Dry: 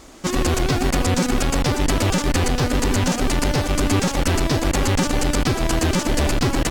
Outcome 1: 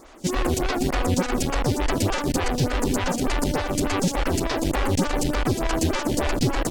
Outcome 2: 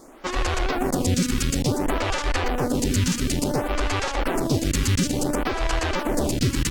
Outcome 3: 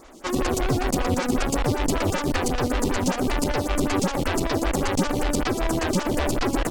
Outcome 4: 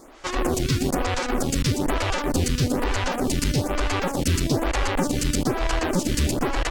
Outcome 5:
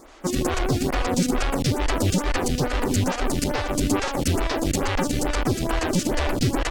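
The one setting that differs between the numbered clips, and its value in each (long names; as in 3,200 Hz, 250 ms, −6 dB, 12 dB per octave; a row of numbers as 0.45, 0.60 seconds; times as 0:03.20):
phaser with staggered stages, speed: 3.4, 0.57, 5.2, 1.1, 2.3 Hertz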